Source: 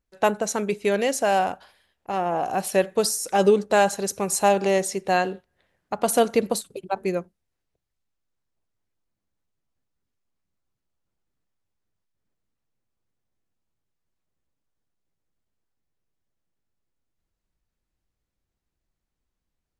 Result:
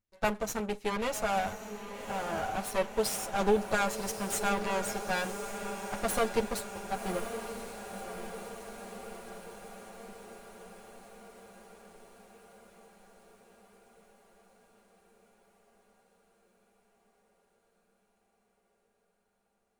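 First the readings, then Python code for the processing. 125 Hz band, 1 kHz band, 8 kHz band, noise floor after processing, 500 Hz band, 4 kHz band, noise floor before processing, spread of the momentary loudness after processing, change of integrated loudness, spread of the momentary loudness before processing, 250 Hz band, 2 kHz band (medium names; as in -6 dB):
-7.0 dB, -8.5 dB, -8.5 dB, -76 dBFS, -10.0 dB, -6.5 dB, -83 dBFS, 19 LU, -10.5 dB, 10 LU, -8.0 dB, -5.5 dB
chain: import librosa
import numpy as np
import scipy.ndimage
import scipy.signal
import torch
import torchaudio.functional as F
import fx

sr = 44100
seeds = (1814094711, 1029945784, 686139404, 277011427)

y = fx.lower_of_two(x, sr, delay_ms=9.1)
y = fx.echo_diffused(y, sr, ms=1089, feedback_pct=65, wet_db=-9)
y = y * librosa.db_to_amplitude(-7.0)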